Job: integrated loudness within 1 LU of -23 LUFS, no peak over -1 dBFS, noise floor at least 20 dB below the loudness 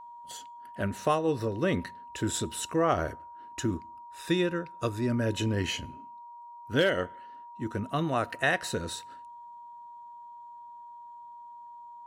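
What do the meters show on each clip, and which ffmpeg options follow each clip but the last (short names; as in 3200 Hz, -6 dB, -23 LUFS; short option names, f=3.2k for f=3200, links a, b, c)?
steady tone 950 Hz; tone level -44 dBFS; loudness -30.0 LUFS; peak -13.0 dBFS; loudness target -23.0 LUFS
-> -af "bandreject=f=950:w=30"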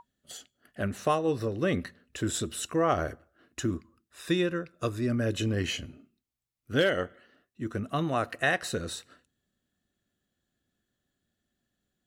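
steady tone none; loudness -30.5 LUFS; peak -13.0 dBFS; loudness target -23.0 LUFS
-> -af "volume=7.5dB"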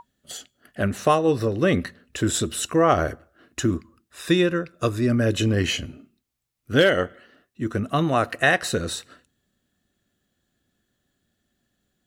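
loudness -23.0 LUFS; peak -5.5 dBFS; noise floor -76 dBFS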